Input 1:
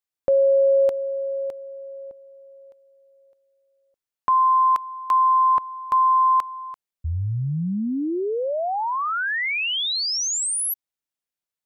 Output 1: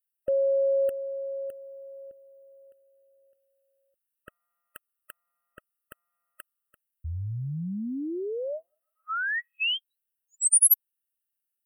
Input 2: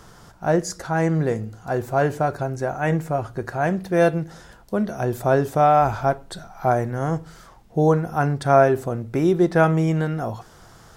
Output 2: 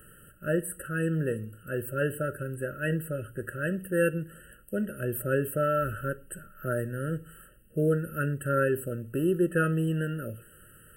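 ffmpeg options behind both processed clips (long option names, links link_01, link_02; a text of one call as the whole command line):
ffmpeg -i in.wav -af "asuperstop=centerf=5100:order=20:qfactor=1,crystalizer=i=4.5:c=0,afftfilt=real='re*eq(mod(floor(b*sr/1024/640),2),0)':imag='im*eq(mod(floor(b*sr/1024/640),2),0)':win_size=1024:overlap=0.75,volume=-7.5dB" out.wav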